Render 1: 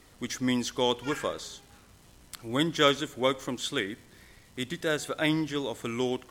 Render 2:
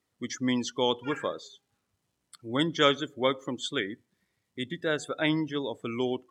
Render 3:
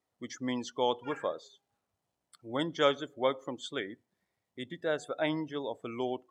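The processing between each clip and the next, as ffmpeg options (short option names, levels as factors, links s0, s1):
-af "highpass=96,afftdn=nr=22:nf=-39"
-af "equalizer=f=710:w=1.2:g=10,volume=0.398"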